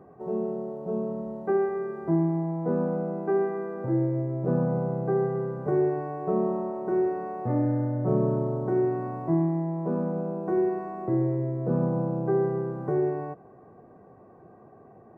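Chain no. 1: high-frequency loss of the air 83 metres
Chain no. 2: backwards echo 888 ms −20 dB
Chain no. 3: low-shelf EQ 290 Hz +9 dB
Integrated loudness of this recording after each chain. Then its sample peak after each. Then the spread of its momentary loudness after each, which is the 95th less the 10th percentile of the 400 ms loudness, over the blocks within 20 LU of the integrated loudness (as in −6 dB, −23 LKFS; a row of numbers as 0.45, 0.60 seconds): −28.0, −27.5, −23.0 LKFS; −13.5, −13.5, −8.0 dBFS; 6, 6, 7 LU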